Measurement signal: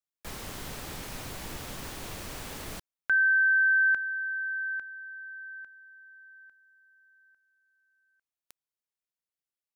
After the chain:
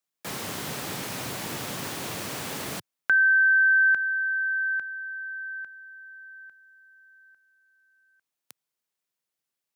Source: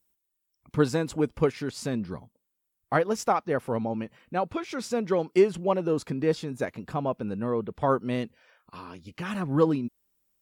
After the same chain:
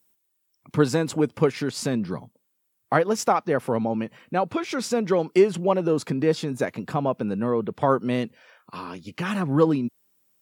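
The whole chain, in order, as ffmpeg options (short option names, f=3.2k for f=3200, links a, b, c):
-filter_complex "[0:a]highpass=f=110:w=0.5412,highpass=f=110:w=1.3066,asplit=2[a][b];[b]acompressor=threshold=-34dB:ratio=6:release=126:detection=peak,volume=-1dB[c];[a][c]amix=inputs=2:normalize=0,volume=1.5dB"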